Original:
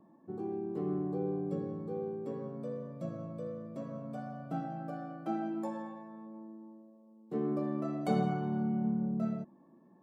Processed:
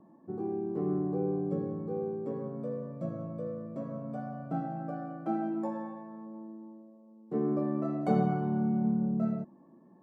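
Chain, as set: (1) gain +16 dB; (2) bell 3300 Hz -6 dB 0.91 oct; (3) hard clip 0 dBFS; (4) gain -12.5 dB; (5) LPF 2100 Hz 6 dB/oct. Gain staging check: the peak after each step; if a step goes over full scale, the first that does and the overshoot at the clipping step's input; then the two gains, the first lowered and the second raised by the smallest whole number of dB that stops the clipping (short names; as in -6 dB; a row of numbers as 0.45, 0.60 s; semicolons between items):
-1.5, -1.5, -1.5, -14.0, -14.5 dBFS; no overload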